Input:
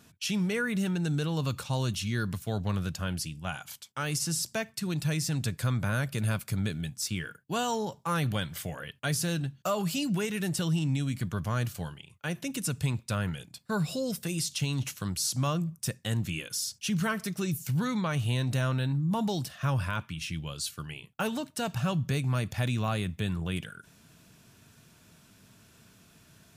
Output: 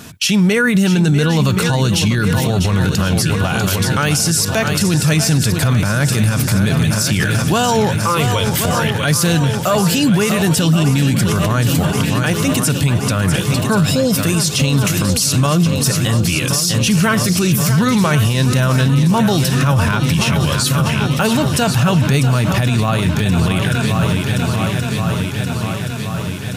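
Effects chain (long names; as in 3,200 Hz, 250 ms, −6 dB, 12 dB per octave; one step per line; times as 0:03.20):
0:07.98–0:08.48: phaser with its sweep stopped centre 1,100 Hz, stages 8
feedback echo with a long and a short gap by turns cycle 1,075 ms, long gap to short 1.5 to 1, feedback 63%, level −10.5 dB
boost into a limiter +28 dB
level −5.5 dB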